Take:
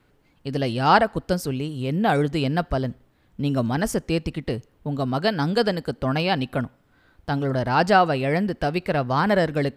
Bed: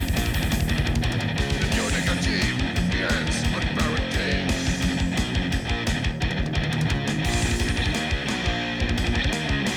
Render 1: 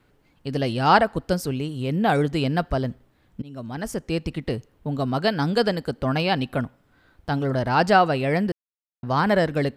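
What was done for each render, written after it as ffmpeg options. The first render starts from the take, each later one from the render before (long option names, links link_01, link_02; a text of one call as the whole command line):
ffmpeg -i in.wav -filter_complex "[0:a]asplit=4[link_01][link_02][link_03][link_04];[link_01]atrim=end=3.42,asetpts=PTS-STARTPTS,afade=type=out:start_time=3.416:duration=0.004:curve=hsin:silence=0.0668344[link_05];[link_02]atrim=start=3.42:end=8.52,asetpts=PTS-STARTPTS,afade=type=in:duration=0.95:silence=0.0668344,afade=type=out:start_time=5.096:duration=0.004:curve=hsin[link_06];[link_03]atrim=start=8.52:end=9.03,asetpts=PTS-STARTPTS,volume=0[link_07];[link_04]atrim=start=9.03,asetpts=PTS-STARTPTS,afade=type=in:duration=0.004:curve=hsin[link_08];[link_05][link_06][link_07][link_08]concat=n=4:v=0:a=1" out.wav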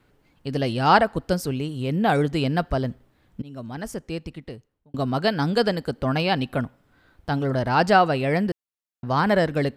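ffmpeg -i in.wav -filter_complex "[0:a]asplit=2[link_01][link_02];[link_01]atrim=end=4.94,asetpts=PTS-STARTPTS,afade=type=out:start_time=3.48:duration=1.46[link_03];[link_02]atrim=start=4.94,asetpts=PTS-STARTPTS,afade=type=in:duration=0.004:curve=hsin[link_04];[link_03][link_04]concat=n=2:v=0:a=1" out.wav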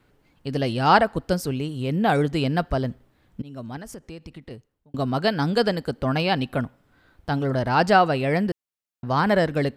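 ffmpeg -i in.wav -filter_complex "[0:a]asettb=1/sr,asplit=3[link_01][link_02][link_03];[link_01]atrim=end=3.774[link_04];[link_02]atrim=start=3.77:end=4.51,asetpts=PTS-STARTPTS,afade=type=in:duration=0.004:curve=qsin,afade=type=out:start_time=0.736:duration=0.004:curve=qsin,acompressor=threshold=-35dB:ratio=4:attack=3.2:release=140:knee=1:detection=peak[link_05];[link_03]atrim=start=4.506[link_06];[link_04][link_05]acrossfade=duration=0.004:curve1=hsin:curve2=qsin[link_07];[link_07][link_06]acrossfade=duration=0.004:curve1=qsin:curve2=hsin" out.wav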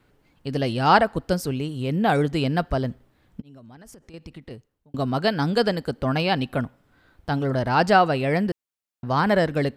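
ffmpeg -i in.wav -filter_complex "[0:a]asettb=1/sr,asplit=3[link_01][link_02][link_03];[link_01]atrim=end=3.404[link_04];[link_02]atrim=start=3.4:end=4.14,asetpts=PTS-STARTPTS,afade=type=in:duration=0.004:curve=qsin,afade=type=out:start_time=0.736:duration=0.004:curve=qsin,acompressor=threshold=-42dB:ratio=8:attack=3.2:release=140:knee=1:detection=peak[link_05];[link_03]atrim=start=4.136[link_06];[link_04][link_05]acrossfade=duration=0.004:curve1=hsin:curve2=qsin[link_07];[link_07][link_06]acrossfade=duration=0.004:curve1=qsin:curve2=hsin" out.wav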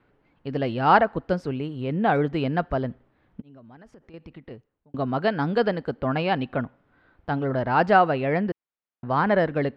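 ffmpeg -i in.wav -af "lowpass=2300,lowshelf=frequency=150:gain=-6.5" out.wav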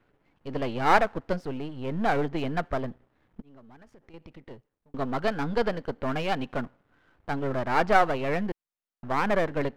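ffmpeg -i in.wav -af "aeval=exprs='if(lt(val(0),0),0.251*val(0),val(0))':channel_layout=same" out.wav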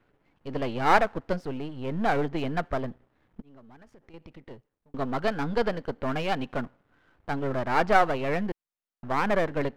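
ffmpeg -i in.wav -af anull out.wav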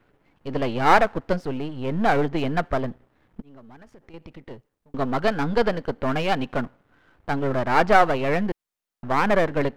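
ffmpeg -i in.wav -af "volume=5dB,alimiter=limit=-2dB:level=0:latency=1" out.wav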